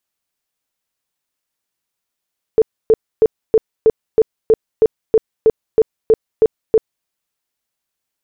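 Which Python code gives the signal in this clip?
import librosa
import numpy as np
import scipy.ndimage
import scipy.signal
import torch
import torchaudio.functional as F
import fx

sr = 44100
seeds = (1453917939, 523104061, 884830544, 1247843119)

y = fx.tone_burst(sr, hz=442.0, cycles=17, every_s=0.32, bursts=14, level_db=-6.0)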